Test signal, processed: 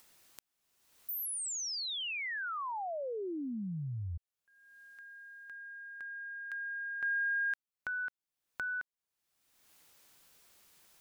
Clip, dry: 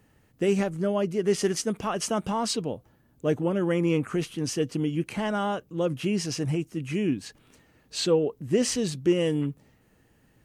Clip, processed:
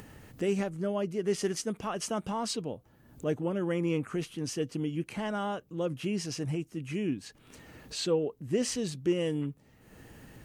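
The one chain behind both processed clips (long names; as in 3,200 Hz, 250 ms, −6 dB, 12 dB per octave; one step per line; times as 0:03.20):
upward compression, threshold −30 dBFS
level −5.5 dB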